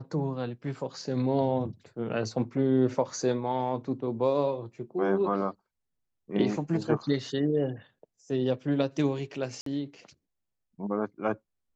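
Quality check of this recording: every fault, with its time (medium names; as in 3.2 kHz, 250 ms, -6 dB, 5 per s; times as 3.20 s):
9.61–9.66 s: dropout 53 ms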